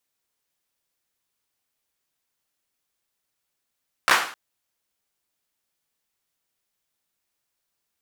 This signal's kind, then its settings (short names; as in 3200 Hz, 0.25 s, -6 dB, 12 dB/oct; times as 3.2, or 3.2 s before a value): hand clap length 0.26 s, bursts 3, apart 15 ms, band 1300 Hz, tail 0.47 s